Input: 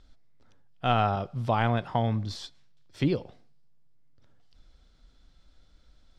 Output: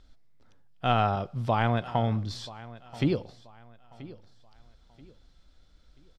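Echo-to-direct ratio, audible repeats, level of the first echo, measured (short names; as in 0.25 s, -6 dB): -18.0 dB, 2, -18.5 dB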